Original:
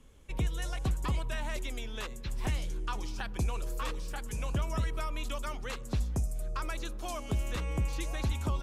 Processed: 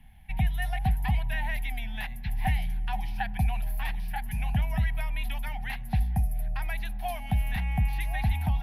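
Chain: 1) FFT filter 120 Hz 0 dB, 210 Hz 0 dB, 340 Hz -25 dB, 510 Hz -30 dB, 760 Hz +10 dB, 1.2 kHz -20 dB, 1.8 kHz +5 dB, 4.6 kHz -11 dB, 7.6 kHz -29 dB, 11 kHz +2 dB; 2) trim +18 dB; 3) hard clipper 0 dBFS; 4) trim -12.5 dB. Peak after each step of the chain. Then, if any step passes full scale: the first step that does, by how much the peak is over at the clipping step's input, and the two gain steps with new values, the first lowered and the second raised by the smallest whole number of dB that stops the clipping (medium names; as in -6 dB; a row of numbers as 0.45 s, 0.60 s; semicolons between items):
-20.5 dBFS, -2.5 dBFS, -2.5 dBFS, -15.0 dBFS; nothing clips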